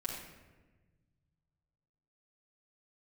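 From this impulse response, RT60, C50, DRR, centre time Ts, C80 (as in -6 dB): 1.3 s, 2.5 dB, -5.0 dB, 51 ms, 5.0 dB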